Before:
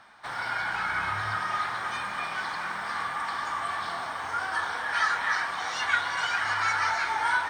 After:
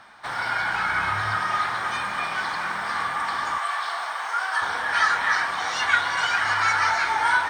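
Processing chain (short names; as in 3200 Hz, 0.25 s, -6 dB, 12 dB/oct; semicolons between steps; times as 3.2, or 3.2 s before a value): 3.58–4.62 HPF 680 Hz 12 dB/oct; gain +5 dB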